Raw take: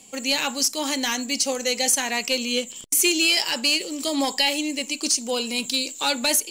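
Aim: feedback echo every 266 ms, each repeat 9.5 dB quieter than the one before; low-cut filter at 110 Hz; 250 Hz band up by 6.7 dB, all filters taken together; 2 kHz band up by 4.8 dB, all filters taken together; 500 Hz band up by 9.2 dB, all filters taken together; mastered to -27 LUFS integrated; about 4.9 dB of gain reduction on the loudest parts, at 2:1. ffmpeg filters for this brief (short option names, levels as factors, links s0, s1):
-af "highpass=110,equalizer=f=250:t=o:g=5,equalizer=f=500:t=o:g=9,equalizer=f=2000:t=o:g=6,acompressor=threshold=0.0891:ratio=2,aecho=1:1:266|532|798|1064:0.335|0.111|0.0365|0.012,volume=0.531"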